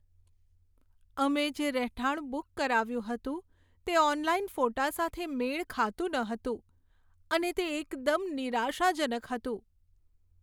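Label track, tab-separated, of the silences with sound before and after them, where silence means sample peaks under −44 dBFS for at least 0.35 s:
3.400000	3.870000	silence
6.570000	7.310000	silence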